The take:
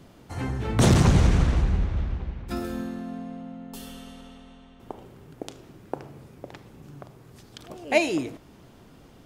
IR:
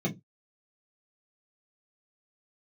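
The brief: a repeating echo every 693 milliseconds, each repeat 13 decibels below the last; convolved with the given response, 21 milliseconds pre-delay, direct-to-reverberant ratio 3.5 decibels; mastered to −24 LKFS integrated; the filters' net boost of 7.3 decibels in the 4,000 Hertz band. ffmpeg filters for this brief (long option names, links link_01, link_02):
-filter_complex "[0:a]equalizer=frequency=4000:width_type=o:gain=9,aecho=1:1:693|1386|2079:0.224|0.0493|0.0108,asplit=2[link_01][link_02];[1:a]atrim=start_sample=2205,adelay=21[link_03];[link_02][link_03]afir=irnorm=-1:irlink=0,volume=-10dB[link_04];[link_01][link_04]amix=inputs=2:normalize=0,volume=-7.5dB"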